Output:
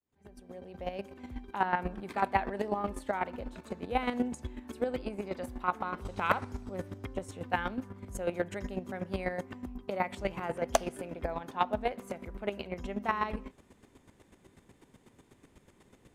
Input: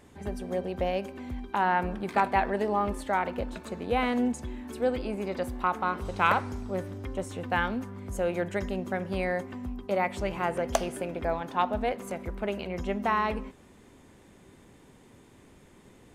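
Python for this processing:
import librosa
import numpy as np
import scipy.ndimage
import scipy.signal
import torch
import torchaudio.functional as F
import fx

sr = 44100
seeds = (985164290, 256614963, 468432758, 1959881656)

y = fx.fade_in_head(x, sr, length_s=1.35)
y = fx.chopper(y, sr, hz=8.1, depth_pct=65, duty_pct=20)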